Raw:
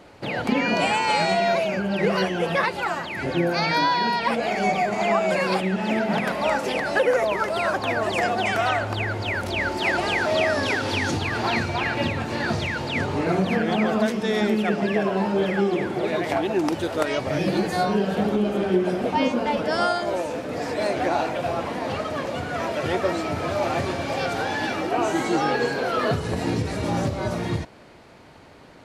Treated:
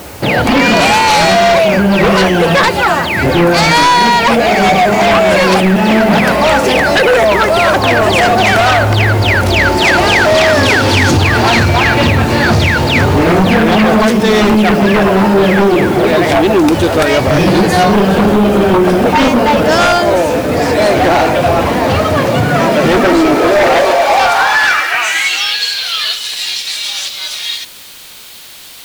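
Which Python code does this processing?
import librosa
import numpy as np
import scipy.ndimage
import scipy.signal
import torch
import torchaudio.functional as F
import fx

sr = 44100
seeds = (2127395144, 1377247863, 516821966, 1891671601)

y = fx.filter_sweep_highpass(x, sr, from_hz=64.0, to_hz=3500.0, start_s=21.83, end_s=25.57, q=2.7)
y = fx.dmg_noise_colour(y, sr, seeds[0], colour='white', level_db=-52.0)
y = fx.fold_sine(y, sr, drive_db=12, ceiling_db=-6.0)
y = F.gain(torch.from_numpy(y), 1.0).numpy()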